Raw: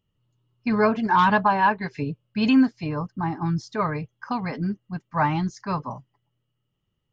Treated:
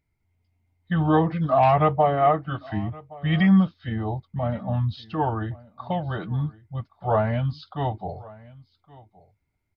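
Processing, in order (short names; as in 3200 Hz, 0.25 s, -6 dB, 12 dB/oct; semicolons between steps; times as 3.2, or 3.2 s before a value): varispeed -27%; on a send: echo 1.119 s -22 dB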